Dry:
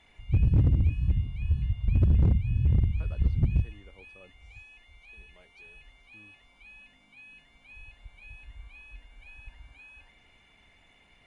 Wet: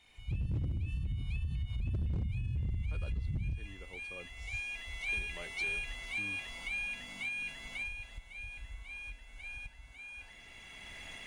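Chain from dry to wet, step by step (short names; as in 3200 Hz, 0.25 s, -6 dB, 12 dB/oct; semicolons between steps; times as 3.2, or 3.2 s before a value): recorder AGC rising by 13 dB/s; Doppler pass-by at 2.51, 15 m/s, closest 6.4 m; compressor, threshold -34 dBFS, peak gain reduction 14 dB; limiter -37.5 dBFS, peak gain reduction 9.5 dB; high shelf 3000 Hz +11.5 dB; gain +8 dB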